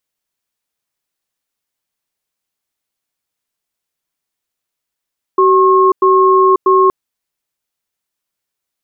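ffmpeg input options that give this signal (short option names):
-f lavfi -i "aevalsrc='0.355*(sin(2*PI*379*t)+sin(2*PI*1080*t))*clip(min(mod(t,0.64),0.54-mod(t,0.64))/0.005,0,1)':d=1.52:s=44100"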